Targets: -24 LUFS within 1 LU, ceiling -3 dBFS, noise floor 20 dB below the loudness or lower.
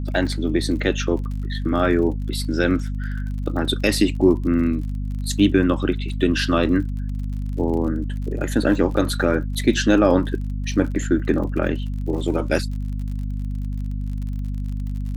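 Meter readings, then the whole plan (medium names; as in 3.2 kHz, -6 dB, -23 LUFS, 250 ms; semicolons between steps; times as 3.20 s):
tick rate 44 per s; hum 50 Hz; highest harmonic 250 Hz; hum level -23 dBFS; loudness -22.0 LUFS; peak level -3.5 dBFS; loudness target -24.0 LUFS
-> de-click; de-hum 50 Hz, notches 5; trim -2 dB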